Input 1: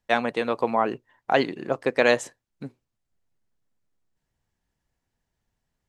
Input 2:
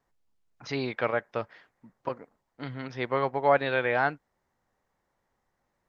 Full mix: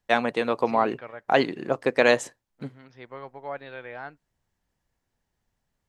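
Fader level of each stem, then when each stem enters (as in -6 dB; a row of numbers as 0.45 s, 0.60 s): +0.5 dB, -13.0 dB; 0.00 s, 0.00 s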